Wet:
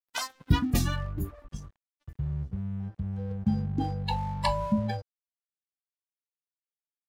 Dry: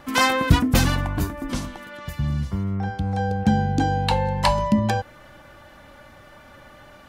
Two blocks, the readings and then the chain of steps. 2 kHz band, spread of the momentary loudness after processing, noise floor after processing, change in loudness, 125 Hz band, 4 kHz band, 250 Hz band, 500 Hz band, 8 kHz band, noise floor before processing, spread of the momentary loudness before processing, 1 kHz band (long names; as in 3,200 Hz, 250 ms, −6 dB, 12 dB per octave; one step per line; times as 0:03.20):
−14.5 dB, 11 LU, below −85 dBFS, −8.5 dB, −7.5 dB, −10.5 dB, −8.0 dB, −11.5 dB, −9.0 dB, −48 dBFS, 11 LU, −11.0 dB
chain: noise reduction from a noise print of the clip's start 22 dB
dead-zone distortion −41.5 dBFS
level −6.5 dB